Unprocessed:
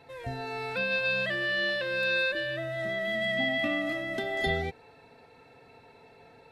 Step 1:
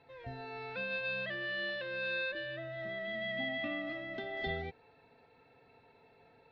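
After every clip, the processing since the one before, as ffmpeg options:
ffmpeg -i in.wav -af "lowpass=frequency=4400:width=0.5412,lowpass=frequency=4400:width=1.3066,volume=-8.5dB" out.wav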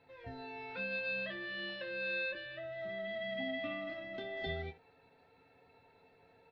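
ffmpeg -i in.wav -af "aecho=1:1:11|26|76:0.562|0.398|0.141,volume=-3.5dB" out.wav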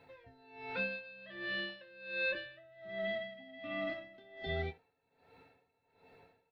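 ffmpeg -i in.wav -af "aeval=exprs='val(0)*pow(10,-21*(0.5-0.5*cos(2*PI*1.3*n/s))/20)':channel_layout=same,volume=5dB" out.wav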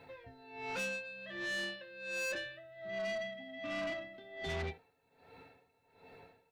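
ffmpeg -i in.wav -af "asoftclip=type=tanh:threshold=-39.5dB,volume=5dB" out.wav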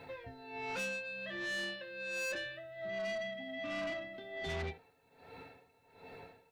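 ffmpeg -i in.wav -af "alimiter=level_in=16dB:limit=-24dB:level=0:latency=1:release=188,volume=-16dB,volume=5dB" out.wav

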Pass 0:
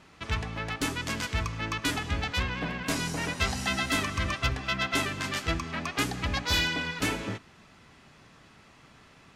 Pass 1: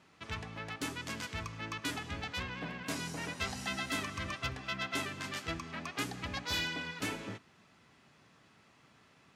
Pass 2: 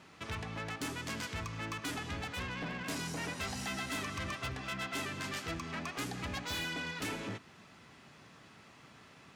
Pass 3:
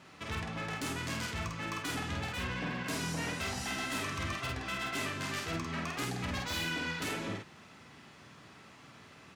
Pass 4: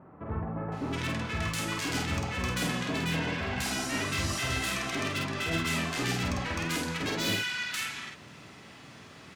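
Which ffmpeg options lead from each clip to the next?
ffmpeg -i in.wav -af "highpass=93,volume=-8dB" out.wav
ffmpeg -i in.wav -filter_complex "[0:a]asplit=2[link_01][link_02];[link_02]acompressor=threshold=-44dB:ratio=6,volume=1dB[link_03];[link_01][link_03]amix=inputs=2:normalize=0,asoftclip=type=tanh:threshold=-32.5dB" out.wav
ffmpeg -i in.wav -filter_complex "[0:a]flanger=delay=6.7:depth=8.1:regen=-64:speed=1.8:shape=triangular,asplit=2[link_01][link_02];[link_02]adelay=49,volume=-3dB[link_03];[link_01][link_03]amix=inputs=2:normalize=0,volume=5dB" out.wav
ffmpeg -i in.wav -filter_complex "[0:a]acrossover=split=1200[link_01][link_02];[link_02]adelay=720[link_03];[link_01][link_03]amix=inputs=2:normalize=0,volume=6dB" out.wav

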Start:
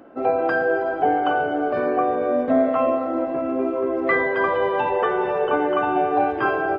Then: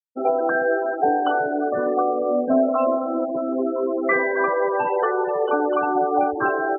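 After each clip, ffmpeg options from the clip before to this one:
ffmpeg -i in.wav -af "afftfilt=real='re*gte(hypot(re,im),0.0891)':imag='im*gte(hypot(re,im),0.0891)':win_size=1024:overlap=0.75" out.wav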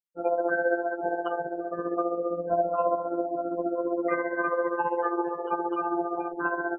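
ffmpeg -i in.wav -af "tremolo=f=15:d=0.62,afftfilt=real='hypot(re,im)*cos(PI*b)':imag='0':win_size=1024:overlap=0.75" out.wav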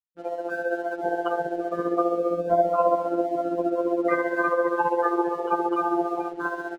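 ffmpeg -i in.wav -filter_complex "[0:a]dynaudnorm=framelen=260:gausssize=7:maxgain=11.5dB,acrossover=split=330[link_01][link_02];[link_02]aeval=exprs='sgn(val(0))*max(abs(val(0))-0.00473,0)':channel_layout=same[link_03];[link_01][link_03]amix=inputs=2:normalize=0,volume=-5dB" out.wav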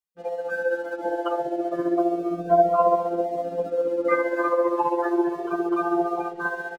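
ffmpeg -i in.wav -filter_complex "[0:a]asplit=2[link_01][link_02];[link_02]adelay=2.1,afreqshift=0.31[link_03];[link_01][link_03]amix=inputs=2:normalize=1,volume=4dB" out.wav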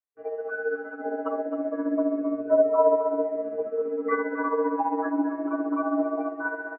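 ffmpeg -i in.wav -af "aecho=1:1:264:0.299,highpass=frequency=320:width_type=q:width=0.5412,highpass=frequency=320:width_type=q:width=1.307,lowpass=frequency=2100:width_type=q:width=0.5176,lowpass=frequency=2100:width_type=q:width=0.7071,lowpass=frequency=2100:width_type=q:width=1.932,afreqshift=-58,volume=-2.5dB" out.wav

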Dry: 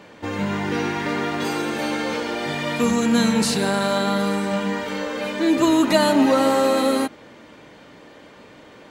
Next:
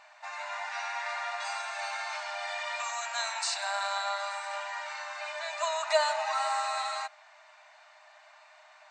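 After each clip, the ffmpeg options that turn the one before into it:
ffmpeg -i in.wav -af "bandreject=frequency=3200:width=6.7,afftfilt=real='re*between(b*sr/4096,600,8800)':imag='im*between(b*sr/4096,600,8800)':win_size=4096:overlap=0.75,volume=-6.5dB" out.wav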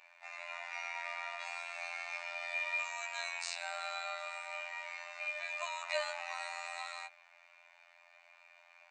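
ffmpeg -i in.wav -af "equalizer=frequency=2400:width=4.3:gain=14,afftfilt=real='hypot(re,im)*cos(PI*b)':imag='0':win_size=2048:overlap=0.75,volume=-7dB" out.wav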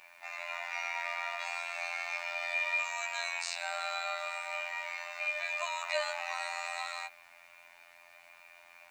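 ffmpeg -i in.wav -filter_complex "[0:a]asplit=2[link_01][link_02];[link_02]alimiter=level_in=1dB:limit=-24dB:level=0:latency=1:release=220,volume=-1dB,volume=-2dB[link_03];[link_01][link_03]amix=inputs=2:normalize=0,acrusher=bits=10:mix=0:aa=0.000001" out.wav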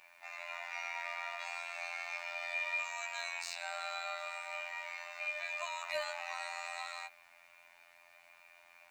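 ffmpeg -i in.wav -af "asoftclip=type=hard:threshold=-18.5dB,volume=-4.5dB" out.wav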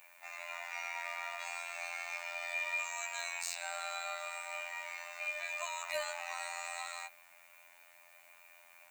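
ffmpeg -i in.wav -af "aexciter=amount=1.7:drive=8.7:freq=6700" out.wav

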